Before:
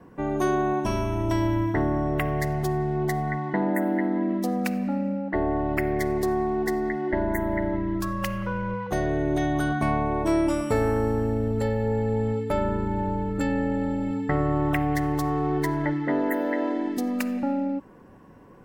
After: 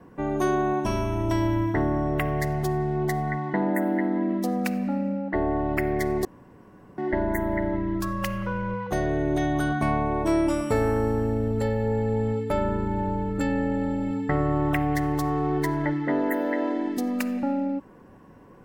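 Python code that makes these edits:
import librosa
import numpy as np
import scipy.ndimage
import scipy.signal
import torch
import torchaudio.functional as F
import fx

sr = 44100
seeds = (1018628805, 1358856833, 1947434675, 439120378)

y = fx.edit(x, sr, fx.room_tone_fill(start_s=6.25, length_s=0.73), tone=tone)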